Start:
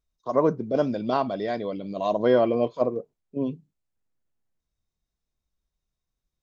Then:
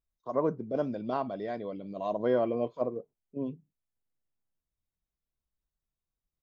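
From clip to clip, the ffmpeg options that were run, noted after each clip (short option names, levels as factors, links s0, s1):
-af "equalizer=f=5000:t=o:w=1.7:g=-7.5,volume=0.447"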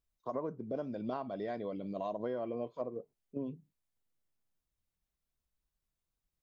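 -af "acompressor=threshold=0.0158:ratio=6,volume=1.19"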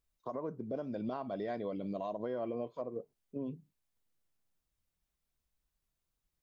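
-af "alimiter=level_in=2.11:limit=0.0631:level=0:latency=1:release=172,volume=0.473,volume=1.26"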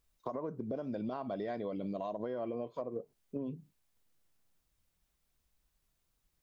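-af "acompressor=threshold=0.00794:ratio=4,volume=2.11"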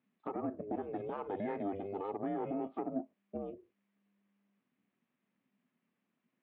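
-filter_complex "[0:a]asplit=2[s0][s1];[s1]highpass=f=720:p=1,volume=3.98,asoftclip=type=tanh:threshold=0.0668[s2];[s0][s2]amix=inputs=2:normalize=0,lowpass=f=1400:p=1,volume=0.501,aeval=exprs='val(0)*sin(2*PI*200*n/s)':c=same,highpass=f=120:w=0.5412,highpass=f=120:w=1.3066,equalizer=f=150:t=q:w=4:g=-7,equalizer=f=270:t=q:w=4:g=5,equalizer=f=500:t=q:w=4:g=-3,equalizer=f=850:t=q:w=4:g=-7,equalizer=f=1400:t=q:w=4:g=-6,lowpass=f=2800:w=0.5412,lowpass=f=2800:w=1.3066,volume=1.5"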